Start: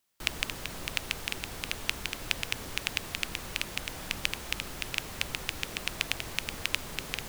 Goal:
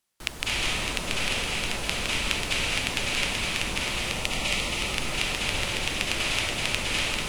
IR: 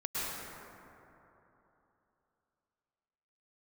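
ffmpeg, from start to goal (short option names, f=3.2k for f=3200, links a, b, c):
-filter_complex "[0:a]asettb=1/sr,asplit=3[a][b][c];[a]atrim=end=3.854[d];[b]atrim=start=3.85:end=4.72,asetpts=PTS-STARTPTS,afade=t=in:d=0.004:c=qsin,afade=t=out:st=0.866:d=0.004:c=qsin,asuperstop=centerf=1600:order=4:qfactor=5.1[e];[c]atrim=start=4.716[f];[d][e]acrossfade=d=0.004:c1=hsin:c2=qsin[g];[g][f]acrossfade=d=0.004:c1=qsin:c2=hsin[h];[1:a]atrim=start_sample=2205,afade=t=out:st=0.3:d=0.01,atrim=end_sample=13671,asetrate=22932,aresample=44100[i];[h][i]afir=irnorm=-1:irlink=0"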